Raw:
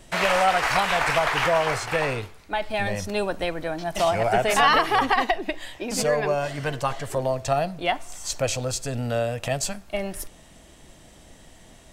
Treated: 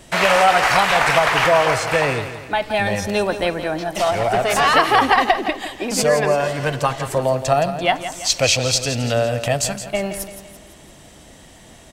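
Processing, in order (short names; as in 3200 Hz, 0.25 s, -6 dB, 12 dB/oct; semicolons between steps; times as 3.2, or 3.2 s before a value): HPF 55 Hz 6 dB/oct; 3.83–4.76 tube stage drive 16 dB, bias 0.5; 8.24–9.14 band shelf 3500 Hz +8 dB; feedback echo 0.169 s, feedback 47%, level -11 dB; gain +6 dB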